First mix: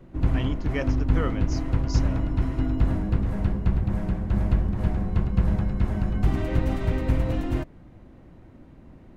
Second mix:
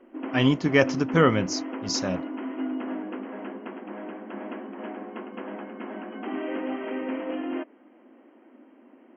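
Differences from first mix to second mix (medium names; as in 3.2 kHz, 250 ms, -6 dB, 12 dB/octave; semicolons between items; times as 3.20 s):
speech +11.0 dB; background: add brick-wall FIR band-pass 220–3300 Hz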